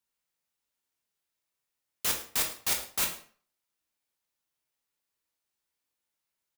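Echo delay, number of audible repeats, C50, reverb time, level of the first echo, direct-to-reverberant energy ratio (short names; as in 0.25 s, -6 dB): 0.107 s, 1, 8.0 dB, 0.45 s, -16.0 dB, 1.5 dB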